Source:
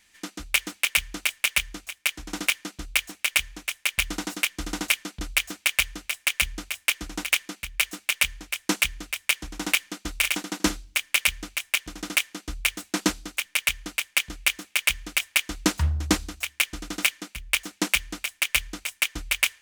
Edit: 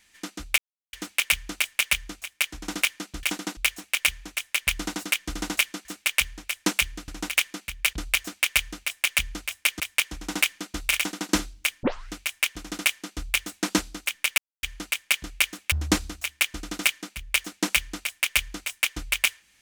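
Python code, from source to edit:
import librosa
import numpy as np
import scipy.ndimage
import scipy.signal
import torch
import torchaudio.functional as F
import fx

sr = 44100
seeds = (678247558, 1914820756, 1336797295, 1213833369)

y = fx.edit(x, sr, fx.insert_silence(at_s=0.58, length_s=0.35),
    fx.swap(start_s=5.16, length_s=1.87, other_s=7.88, other_length_s=1.23),
    fx.duplicate(start_s=10.28, length_s=0.34, to_s=2.88),
    fx.tape_start(start_s=11.14, length_s=0.29),
    fx.insert_silence(at_s=13.69, length_s=0.25),
    fx.cut(start_s=14.78, length_s=1.13), tone=tone)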